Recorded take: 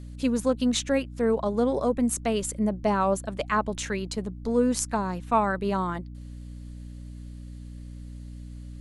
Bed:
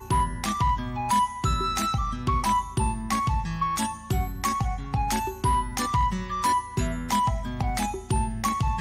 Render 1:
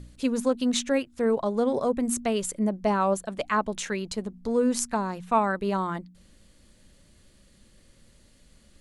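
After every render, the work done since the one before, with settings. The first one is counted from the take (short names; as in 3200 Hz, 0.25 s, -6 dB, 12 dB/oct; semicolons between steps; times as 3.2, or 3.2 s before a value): de-hum 60 Hz, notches 5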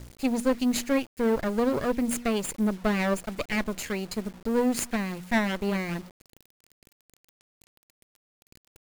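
minimum comb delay 0.44 ms; requantised 8-bit, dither none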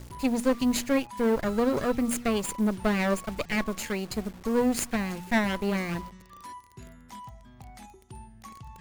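add bed -20 dB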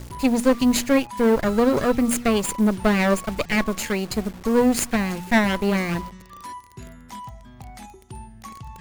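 gain +6.5 dB; limiter -3 dBFS, peak gain reduction 1 dB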